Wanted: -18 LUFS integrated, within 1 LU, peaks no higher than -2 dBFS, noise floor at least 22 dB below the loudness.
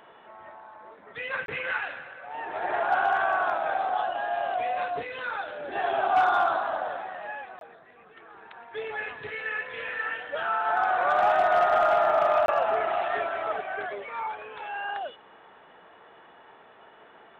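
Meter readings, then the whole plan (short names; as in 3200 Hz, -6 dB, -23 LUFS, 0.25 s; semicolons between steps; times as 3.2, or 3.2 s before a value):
dropouts 3; longest dropout 22 ms; loudness -27.0 LUFS; peak -15.0 dBFS; loudness target -18.0 LUFS
-> interpolate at 1.46/7.59/12.46, 22 ms; gain +9 dB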